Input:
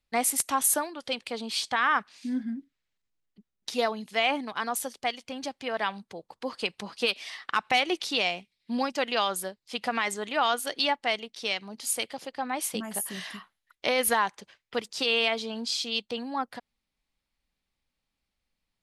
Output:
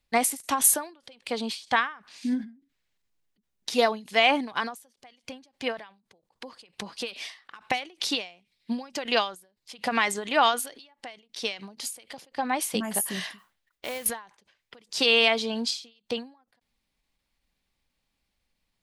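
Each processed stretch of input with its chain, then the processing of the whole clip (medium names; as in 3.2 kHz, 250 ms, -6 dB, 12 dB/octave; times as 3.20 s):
13.38–14.06 s: distance through air 73 m + compression 2:1, threshold -45 dBFS + modulation noise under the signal 12 dB
whole clip: band-stop 1.3 kHz, Q 18; endings held to a fixed fall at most 150 dB/s; trim +5 dB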